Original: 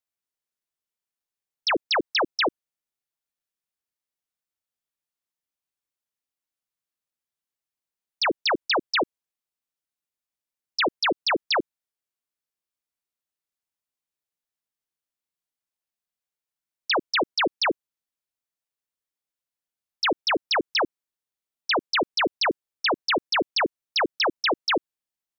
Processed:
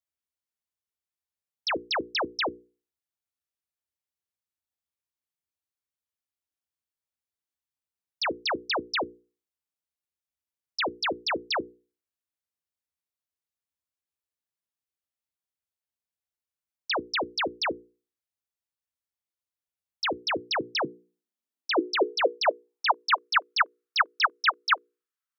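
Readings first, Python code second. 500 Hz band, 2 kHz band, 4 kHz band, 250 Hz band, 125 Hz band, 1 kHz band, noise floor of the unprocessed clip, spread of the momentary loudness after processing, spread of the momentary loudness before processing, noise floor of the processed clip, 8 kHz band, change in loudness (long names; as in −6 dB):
−3.5 dB, −2.5 dB, −4.5 dB, −5.0 dB, −3.5 dB, −1.5 dB, below −85 dBFS, 7 LU, 4 LU, below −85 dBFS, can't be measured, −3.5 dB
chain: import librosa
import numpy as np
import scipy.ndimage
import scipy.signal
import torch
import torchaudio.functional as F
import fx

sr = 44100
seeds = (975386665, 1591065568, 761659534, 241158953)

y = fx.hum_notches(x, sr, base_hz=60, count=8)
y = fx.filter_sweep_highpass(y, sr, from_hz=67.0, to_hz=1300.0, start_s=20.01, end_s=23.34, q=4.2)
y = F.gain(torch.from_numpy(y), -5.0).numpy()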